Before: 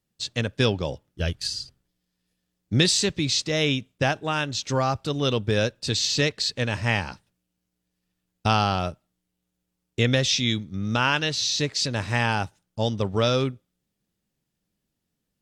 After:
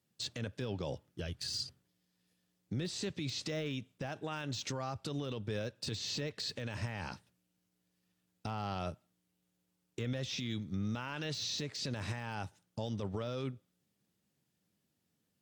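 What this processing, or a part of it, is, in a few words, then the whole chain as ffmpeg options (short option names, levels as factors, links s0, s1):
podcast mastering chain: -af "highpass=f=81:w=0.5412,highpass=f=81:w=1.3066,deesser=0.8,acompressor=threshold=0.0282:ratio=4,alimiter=level_in=1.58:limit=0.0631:level=0:latency=1:release=34,volume=0.631" -ar 44100 -c:a libmp3lame -b:a 112k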